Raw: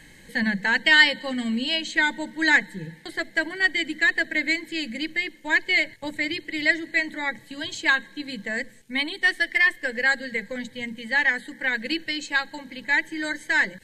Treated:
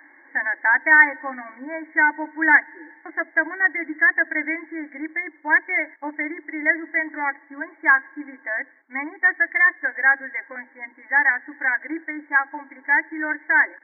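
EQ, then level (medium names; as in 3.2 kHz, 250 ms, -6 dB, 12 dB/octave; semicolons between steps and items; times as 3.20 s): brick-wall FIR high-pass 270 Hz; brick-wall FIR low-pass 2.3 kHz; static phaser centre 1.1 kHz, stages 4; +8.0 dB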